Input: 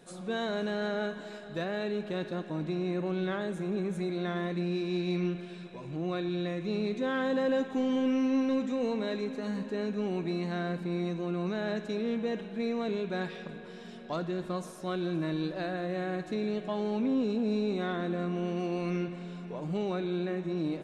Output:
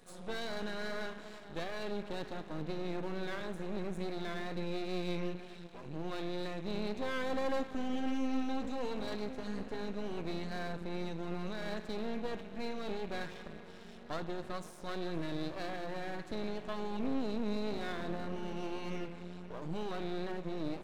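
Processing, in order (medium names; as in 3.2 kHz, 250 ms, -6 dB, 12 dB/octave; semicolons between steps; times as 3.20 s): half-wave rectifier; wow and flutter 26 cents; trim -1 dB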